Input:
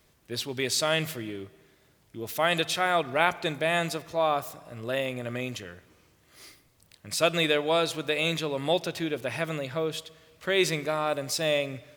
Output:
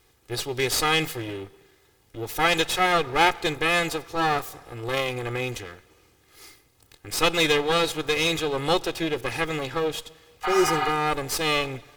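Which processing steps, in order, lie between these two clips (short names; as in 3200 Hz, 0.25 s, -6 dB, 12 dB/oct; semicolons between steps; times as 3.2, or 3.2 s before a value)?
minimum comb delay 2.4 ms; wow and flutter 16 cents; spectral repair 10.47–10.86, 580–4800 Hz after; gain +4 dB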